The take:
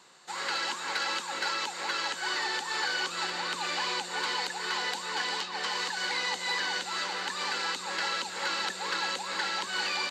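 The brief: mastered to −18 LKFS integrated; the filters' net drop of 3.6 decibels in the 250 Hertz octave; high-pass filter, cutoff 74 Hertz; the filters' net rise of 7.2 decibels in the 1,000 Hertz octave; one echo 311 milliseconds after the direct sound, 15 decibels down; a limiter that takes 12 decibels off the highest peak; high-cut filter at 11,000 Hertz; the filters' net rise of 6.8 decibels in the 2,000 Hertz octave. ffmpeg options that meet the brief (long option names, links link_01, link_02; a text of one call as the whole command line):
ffmpeg -i in.wav -af "highpass=74,lowpass=11000,equalizer=frequency=250:width_type=o:gain=-7,equalizer=frequency=1000:width_type=o:gain=7.5,equalizer=frequency=2000:width_type=o:gain=6,alimiter=limit=-24dB:level=0:latency=1,aecho=1:1:311:0.178,volume=13dB" out.wav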